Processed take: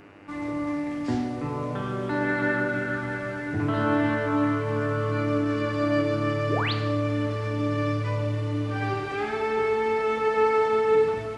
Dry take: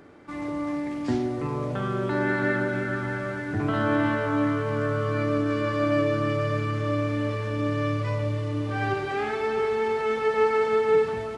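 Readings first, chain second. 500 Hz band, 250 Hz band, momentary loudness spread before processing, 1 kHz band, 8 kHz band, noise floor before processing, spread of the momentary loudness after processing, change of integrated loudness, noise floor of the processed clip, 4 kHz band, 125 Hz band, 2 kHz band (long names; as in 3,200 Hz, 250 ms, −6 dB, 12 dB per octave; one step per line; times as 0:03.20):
−0.5 dB, +0.5 dB, 7 LU, +0.5 dB, can't be measured, −32 dBFS, 8 LU, 0.0 dB, −32 dBFS, +2.0 dB, 0.0 dB, +0.5 dB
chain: sound drawn into the spectrogram rise, 0:06.49–0:06.73, 260–5,000 Hz −28 dBFS
feedback delay network reverb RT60 0.96 s, low-frequency decay 1.05×, high-frequency decay 0.9×, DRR 5.5 dB
hum with harmonics 100 Hz, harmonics 29, −53 dBFS −2 dB per octave
level −1.5 dB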